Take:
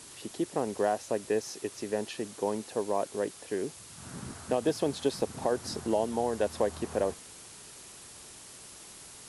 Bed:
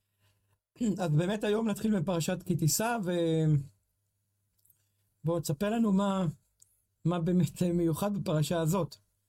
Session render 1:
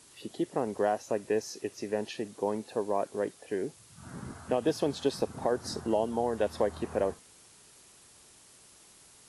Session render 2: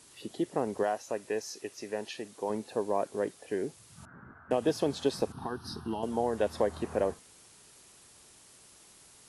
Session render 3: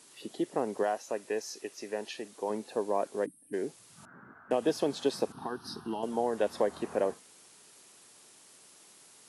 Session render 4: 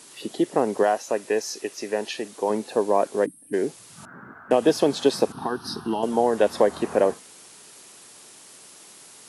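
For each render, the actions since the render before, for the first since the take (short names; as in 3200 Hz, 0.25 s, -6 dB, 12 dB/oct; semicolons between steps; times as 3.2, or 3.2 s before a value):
noise print and reduce 8 dB
0.83–2.5 low shelf 450 Hz -8 dB; 4.05–4.51 ladder low-pass 1700 Hz, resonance 65%; 5.32–6.03 fixed phaser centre 2100 Hz, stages 6
3.26–3.54 spectral gain 320–8200 Hz -27 dB; HPF 190 Hz 12 dB/oct
gain +9.5 dB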